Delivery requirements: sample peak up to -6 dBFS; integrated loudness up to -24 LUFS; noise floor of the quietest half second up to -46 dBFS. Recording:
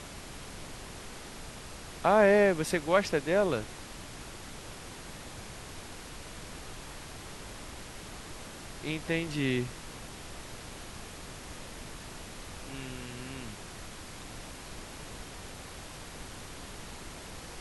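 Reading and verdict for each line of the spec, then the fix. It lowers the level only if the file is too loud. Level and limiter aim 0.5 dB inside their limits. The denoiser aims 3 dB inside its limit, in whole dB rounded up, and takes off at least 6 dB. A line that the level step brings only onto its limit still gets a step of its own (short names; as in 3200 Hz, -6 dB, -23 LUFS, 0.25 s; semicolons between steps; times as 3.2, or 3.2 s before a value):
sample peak -11.0 dBFS: OK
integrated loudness -34.5 LUFS: OK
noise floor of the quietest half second -45 dBFS: fail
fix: denoiser 6 dB, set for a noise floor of -45 dBFS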